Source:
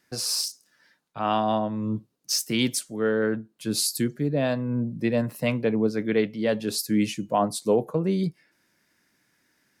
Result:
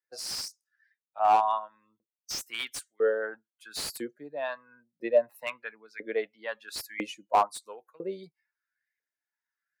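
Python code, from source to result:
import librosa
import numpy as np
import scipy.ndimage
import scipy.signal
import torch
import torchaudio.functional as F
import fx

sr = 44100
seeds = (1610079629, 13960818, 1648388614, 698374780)

y = fx.bin_expand(x, sr, power=1.5)
y = fx.filter_lfo_highpass(y, sr, shape='saw_up', hz=1.0, low_hz=480.0, high_hz=2200.0, q=4.9)
y = fx.slew_limit(y, sr, full_power_hz=210.0)
y = y * librosa.db_to_amplitude(-3.5)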